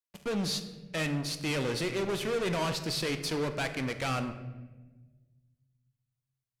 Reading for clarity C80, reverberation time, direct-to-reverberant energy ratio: 12.0 dB, 1.2 s, 7.5 dB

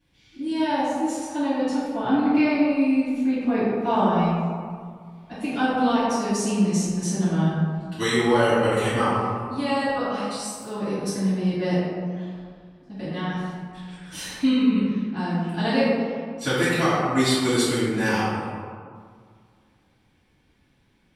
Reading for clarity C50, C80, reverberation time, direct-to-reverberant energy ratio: −3.0 dB, −0.5 dB, 2.0 s, −15.0 dB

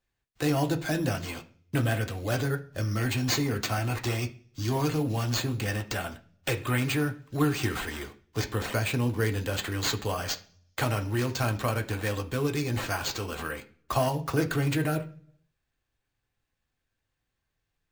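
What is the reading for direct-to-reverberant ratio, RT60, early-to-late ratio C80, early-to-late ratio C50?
4.0 dB, 0.45 s, 20.5 dB, 15.5 dB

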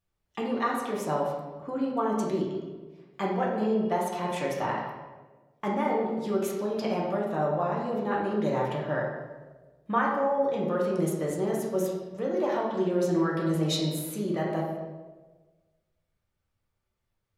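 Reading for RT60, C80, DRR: 1.3 s, 4.5 dB, −4.0 dB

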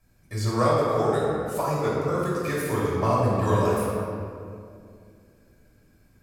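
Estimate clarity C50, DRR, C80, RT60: −2.5 dB, −8.5 dB, −1.0 dB, 2.4 s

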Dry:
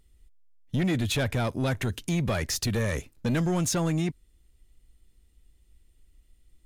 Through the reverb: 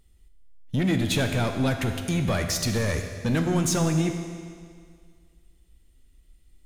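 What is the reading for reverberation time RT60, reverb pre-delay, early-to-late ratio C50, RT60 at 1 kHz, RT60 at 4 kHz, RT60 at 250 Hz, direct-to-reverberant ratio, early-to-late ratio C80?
2.0 s, 12 ms, 6.5 dB, 2.0 s, 1.9 s, 2.0 s, 5.0 dB, 7.5 dB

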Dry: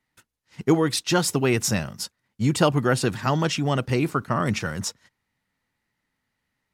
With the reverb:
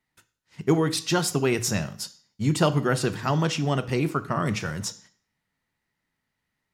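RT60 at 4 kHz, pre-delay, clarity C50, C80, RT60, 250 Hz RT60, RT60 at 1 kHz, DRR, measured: 0.50 s, 3 ms, 17.0 dB, 20.5 dB, 0.50 s, 0.55 s, 0.50 s, 11.5 dB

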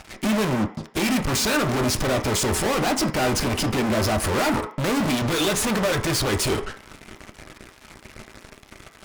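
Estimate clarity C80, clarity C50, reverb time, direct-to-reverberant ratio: 15.5 dB, 11.5 dB, 0.45 s, 4.0 dB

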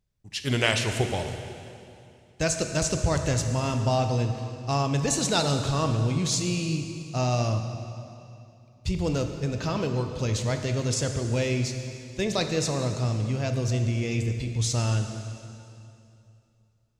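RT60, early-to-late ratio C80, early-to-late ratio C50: 2.7 s, 7.5 dB, 6.5 dB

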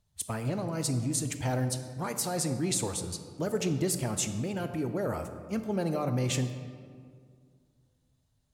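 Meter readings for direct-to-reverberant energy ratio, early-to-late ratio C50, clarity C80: 8.0 dB, 9.0 dB, 10.0 dB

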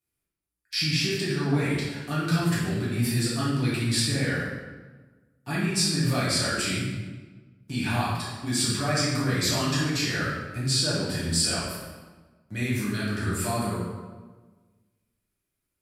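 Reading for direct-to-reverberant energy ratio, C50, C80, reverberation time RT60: −9.0 dB, 0.0 dB, 3.0 dB, 1.3 s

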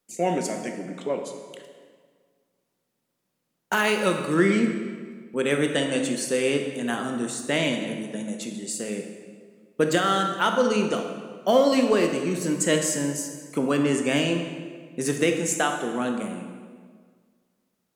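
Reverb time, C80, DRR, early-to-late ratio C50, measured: 1.7 s, 7.0 dB, 4.0 dB, 5.5 dB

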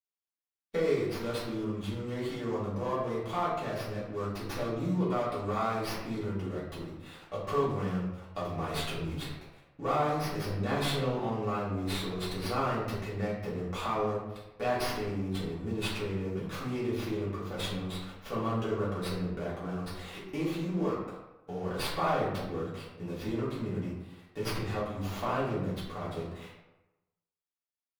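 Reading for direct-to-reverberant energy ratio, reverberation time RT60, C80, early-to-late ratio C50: −10.0 dB, 1.0 s, 4.5 dB, 2.0 dB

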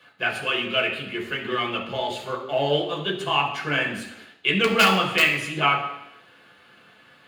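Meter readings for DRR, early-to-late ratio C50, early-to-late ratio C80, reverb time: −2.5 dB, 7.0 dB, 9.5 dB, 0.85 s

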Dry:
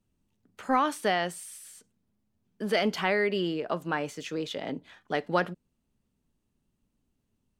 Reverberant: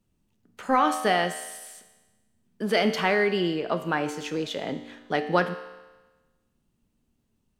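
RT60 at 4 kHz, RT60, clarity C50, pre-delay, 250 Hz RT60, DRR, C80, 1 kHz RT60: 1.2 s, 1.2 s, 10.5 dB, 4 ms, 1.2 s, 8.0 dB, 12.0 dB, 1.2 s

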